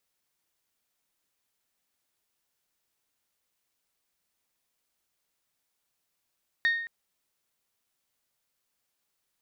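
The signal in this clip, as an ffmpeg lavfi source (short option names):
-f lavfi -i "aevalsrc='0.106*pow(10,-3*t/0.75)*sin(2*PI*1850*t)+0.0299*pow(10,-3*t/0.462)*sin(2*PI*3700*t)+0.00841*pow(10,-3*t/0.406)*sin(2*PI*4440*t)+0.00237*pow(10,-3*t/0.348)*sin(2*PI*5550*t)+0.000668*pow(10,-3*t/0.284)*sin(2*PI*7400*t)':d=0.22:s=44100"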